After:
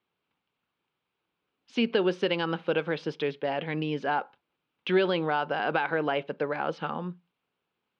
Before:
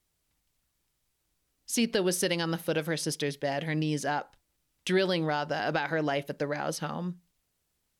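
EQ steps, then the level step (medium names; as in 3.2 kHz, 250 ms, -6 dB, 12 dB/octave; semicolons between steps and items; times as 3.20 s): cabinet simulation 250–2900 Hz, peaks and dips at 300 Hz -5 dB, 630 Hz -7 dB, 1.9 kHz -9 dB; +5.5 dB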